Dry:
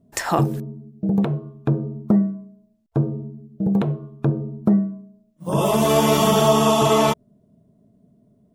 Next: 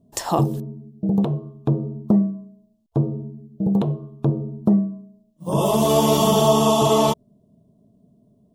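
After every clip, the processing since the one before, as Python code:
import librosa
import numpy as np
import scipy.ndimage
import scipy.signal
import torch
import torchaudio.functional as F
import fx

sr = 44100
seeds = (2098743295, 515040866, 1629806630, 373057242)

y = fx.band_shelf(x, sr, hz=1800.0, db=-10.5, octaves=1.1)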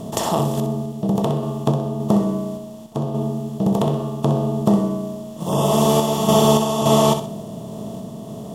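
y = fx.bin_compress(x, sr, power=0.4)
y = fx.tremolo_random(y, sr, seeds[0], hz=3.5, depth_pct=55)
y = fx.room_flutter(y, sr, wall_m=10.8, rt60_s=0.42)
y = y * 10.0 ** (-2.0 / 20.0)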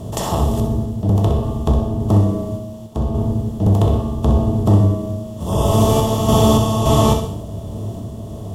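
y = fx.octave_divider(x, sr, octaves=1, level_db=3.0)
y = fx.rev_gated(y, sr, seeds[1], gate_ms=250, shape='falling', drr_db=5.0)
y = y * 10.0 ** (-2.0 / 20.0)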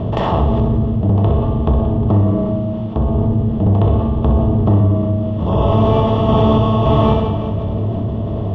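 y = scipy.signal.sosfilt(scipy.signal.butter(4, 2900.0, 'lowpass', fs=sr, output='sos'), x)
y = fx.echo_feedback(y, sr, ms=179, feedback_pct=51, wet_db=-16.0)
y = fx.env_flatten(y, sr, amount_pct=50)
y = y * 10.0 ** (-1.0 / 20.0)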